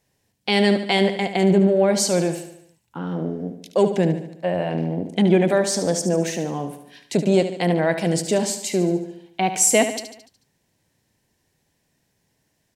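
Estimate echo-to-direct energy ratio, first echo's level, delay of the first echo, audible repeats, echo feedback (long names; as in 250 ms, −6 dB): −8.5 dB, −10.0 dB, 73 ms, 5, 53%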